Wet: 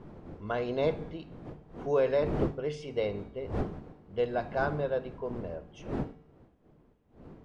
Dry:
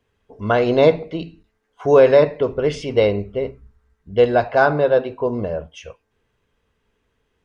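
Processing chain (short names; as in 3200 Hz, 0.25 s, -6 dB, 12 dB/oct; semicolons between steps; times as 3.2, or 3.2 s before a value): wind noise 330 Hz -25 dBFS; resonator 150 Hz, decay 0.85 s, harmonics odd, mix 60%; de-hum 56.29 Hz, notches 5; gain -7.5 dB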